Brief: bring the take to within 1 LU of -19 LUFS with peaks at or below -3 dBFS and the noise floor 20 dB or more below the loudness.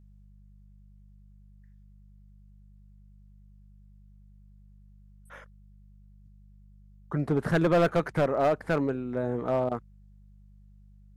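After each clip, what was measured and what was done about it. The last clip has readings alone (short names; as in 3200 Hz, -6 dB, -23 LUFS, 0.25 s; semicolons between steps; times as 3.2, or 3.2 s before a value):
clipped 0.6%; flat tops at -18.0 dBFS; hum 50 Hz; harmonics up to 200 Hz; hum level -52 dBFS; loudness -27.5 LUFS; peak -18.0 dBFS; loudness target -19.0 LUFS
-> clip repair -18 dBFS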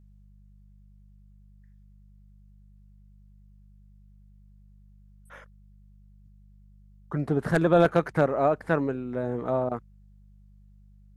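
clipped 0.0%; hum 50 Hz; harmonics up to 200 Hz; hum level -52 dBFS
-> de-hum 50 Hz, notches 4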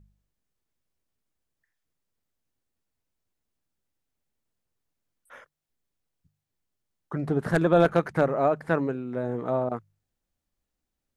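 hum none; loudness -25.5 LUFS; peak -8.5 dBFS; loudness target -19.0 LUFS
-> gain +6.5 dB; limiter -3 dBFS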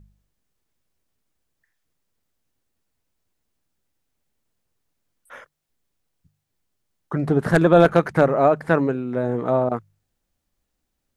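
loudness -19.5 LUFS; peak -3.0 dBFS; noise floor -78 dBFS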